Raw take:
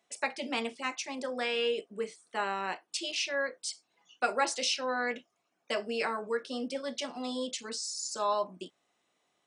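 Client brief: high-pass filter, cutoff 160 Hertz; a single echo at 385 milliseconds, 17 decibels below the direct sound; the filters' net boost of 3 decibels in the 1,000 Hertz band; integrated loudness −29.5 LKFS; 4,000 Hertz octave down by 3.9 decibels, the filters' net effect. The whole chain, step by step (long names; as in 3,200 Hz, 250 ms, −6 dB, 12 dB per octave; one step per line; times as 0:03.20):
high-pass filter 160 Hz
parametric band 1,000 Hz +4 dB
parametric band 4,000 Hz −6 dB
single-tap delay 385 ms −17 dB
level +3.5 dB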